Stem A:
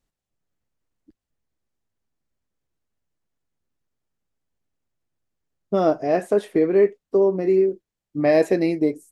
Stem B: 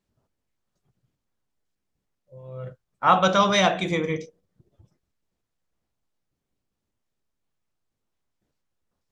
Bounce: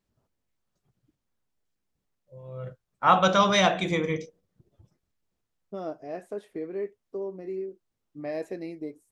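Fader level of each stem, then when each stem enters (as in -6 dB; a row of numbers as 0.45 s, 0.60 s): -16.0 dB, -1.5 dB; 0.00 s, 0.00 s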